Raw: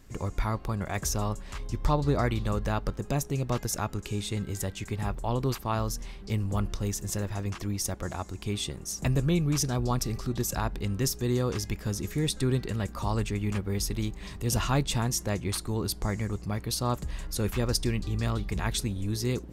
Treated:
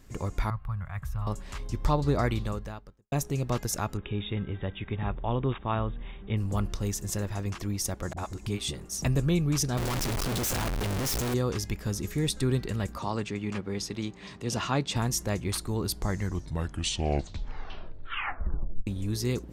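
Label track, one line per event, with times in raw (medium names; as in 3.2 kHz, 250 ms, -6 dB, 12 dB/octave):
0.500000	1.270000	FFT filter 130 Hz 0 dB, 330 Hz -28 dB, 1.2 kHz -4 dB, 2.1 kHz -9 dB, 3.3 kHz -14 dB, 6 kHz -28 dB, 13 kHz -14 dB
2.370000	3.120000	fade out quadratic
3.970000	6.370000	brick-wall FIR low-pass 3.8 kHz
8.130000	9.020000	phase dispersion highs, late by 41 ms, half as late at 330 Hz
9.770000	11.340000	one-bit comparator
12.980000	14.960000	band-pass 150–6200 Hz
15.980000	15.980000	tape stop 2.89 s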